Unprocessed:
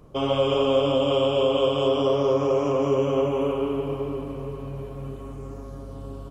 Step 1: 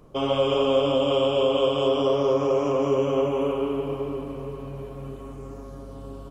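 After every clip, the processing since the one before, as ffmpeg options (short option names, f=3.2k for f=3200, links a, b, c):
-af "equalizer=f=83:w=1.1:g=-6"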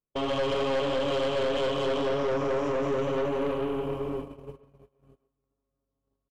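-filter_complex "[0:a]agate=range=-43dB:threshold=-31dB:ratio=16:detection=peak,asplit=2[a][b];[b]adelay=130,highpass=300,lowpass=3.4k,asoftclip=type=hard:threshold=-20.5dB,volume=-15dB[c];[a][c]amix=inputs=2:normalize=0,aeval=exprs='(tanh(15.8*val(0)+0.4)-tanh(0.4))/15.8':c=same"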